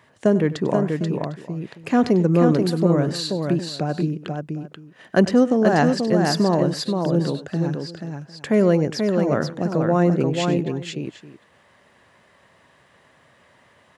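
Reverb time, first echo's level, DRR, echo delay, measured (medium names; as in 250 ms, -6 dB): no reverb, -16.0 dB, no reverb, 97 ms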